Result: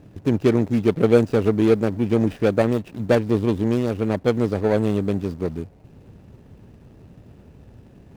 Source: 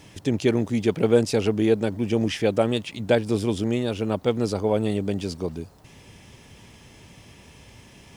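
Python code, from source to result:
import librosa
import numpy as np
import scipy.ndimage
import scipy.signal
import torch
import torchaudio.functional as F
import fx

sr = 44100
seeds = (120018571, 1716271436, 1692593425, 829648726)

y = scipy.ndimage.median_filter(x, 41, mode='constant')
y = F.gain(torch.from_numpy(y), 4.0).numpy()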